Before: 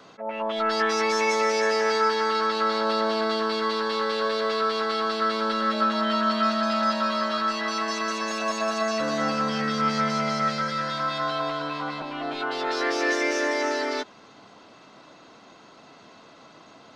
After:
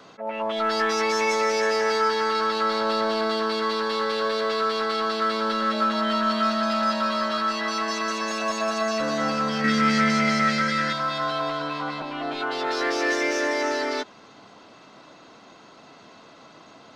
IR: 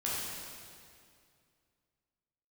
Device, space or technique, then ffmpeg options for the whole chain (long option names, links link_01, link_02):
parallel distortion: -filter_complex "[0:a]asplit=2[link_01][link_02];[link_02]asoftclip=type=hard:threshold=-24.5dB,volume=-8.5dB[link_03];[link_01][link_03]amix=inputs=2:normalize=0,asettb=1/sr,asplit=3[link_04][link_05][link_06];[link_04]atrim=end=9.644[link_07];[link_05]atrim=start=9.64:end=10.93,asetpts=PTS-STARTPTS,afade=type=in:duration=0.004:curve=qsin,afade=type=out:start_time=1.286:duration=0.004:curve=qsin,equalizer=frequency=250:width_type=o:width=1:gain=7,equalizer=frequency=1000:width_type=o:width=1:gain=-5,equalizer=frequency=2000:width_type=o:width=1:gain=10,equalizer=frequency=8000:width_type=o:width=1:gain=5[link_08];[link_06]atrim=start=10.926[link_09];[link_07][link_08]acrossfade=duration=0.004:curve1=hsin:curve2=qsin[link_10];[link_10][link_09]acrossfade=duration=0.004:curve1=qsin:curve2=hsin,volume=-1.5dB"